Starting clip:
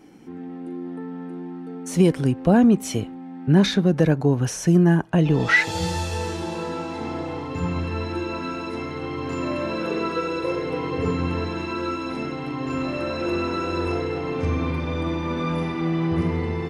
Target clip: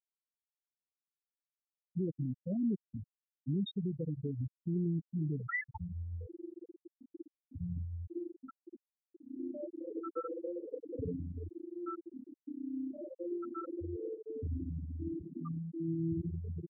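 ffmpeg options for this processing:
ffmpeg -i in.wav -af "alimiter=limit=-17dB:level=0:latency=1:release=73,afftfilt=real='re*gte(hypot(re,im),0.316)':imag='im*gte(hypot(re,im),0.316)':win_size=1024:overlap=0.75,volume=-9dB" out.wav

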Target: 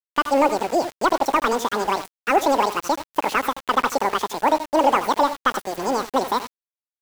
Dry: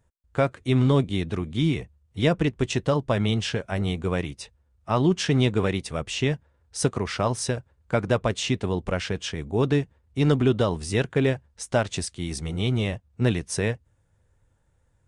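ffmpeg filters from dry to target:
ffmpeg -i in.wav -filter_complex "[0:a]highpass=frequency=190:poles=1,asetrate=94815,aresample=44100,asplit=2[link_01][link_02];[link_02]highpass=frequency=720:poles=1,volume=18dB,asoftclip=type=tanh:threshold=-2.5dB[link_03];[link_01][link_03]amix=inputs=2:normalize=0,lowpass=frequency=1200:poles=1,volume=-6dB,asplit=2[link_04][link_05];[link_05]aecho=0:1:80|97:0.237|0.15[link_06];[link_04][link_06]amix=inputs=2:normalize=0,aeval=exprs='val(0)*gte(abs(val(0)),0.0299)':channel_layout=same" out.wav

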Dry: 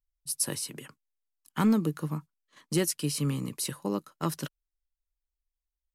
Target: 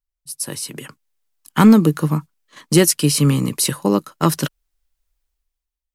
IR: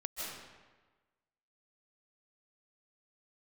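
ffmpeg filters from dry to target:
-af "dynaudnorm=framelen=130:gausssize=11:maxgain=16.5dB"

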